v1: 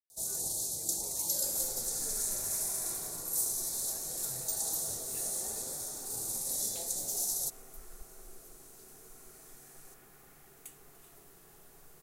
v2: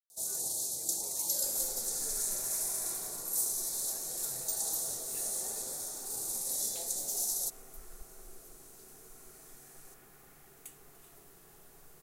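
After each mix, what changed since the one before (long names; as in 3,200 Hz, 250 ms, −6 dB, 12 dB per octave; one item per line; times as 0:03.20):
first sound: add low-shelf EQ 160 Hz −11 dB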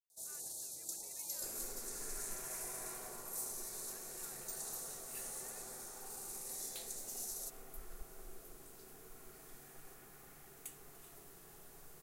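first sound −11.0 dB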